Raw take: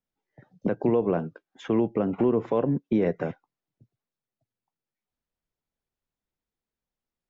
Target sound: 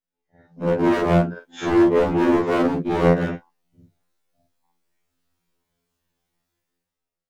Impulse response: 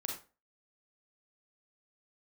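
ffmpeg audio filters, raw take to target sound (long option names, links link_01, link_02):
-af "afftfilt=real='re':imag='-im':win_size=4096:overlap=0.75,dynaudnorm=framelen=110:gausssize=13:maxgain=16dB,volume=17dB,asoftclip=hard,volume=-17dB,afftfilt=real='re*2*eq(mod(b,4),0)':imag='im*2*eq(mod(b,4),0)':win_size=2048:overlap=0.75,volume=4dB"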